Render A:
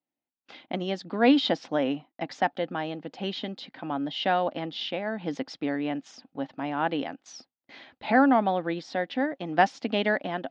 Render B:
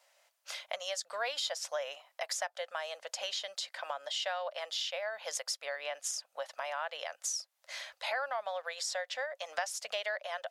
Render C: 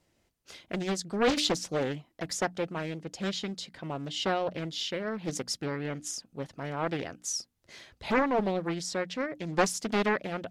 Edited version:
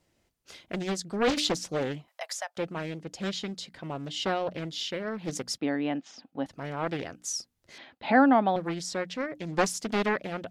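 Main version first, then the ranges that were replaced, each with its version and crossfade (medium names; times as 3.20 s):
C
2.08–2.57 s: from B
5.58–6.46 s: from A
7.78–8.56 s: from A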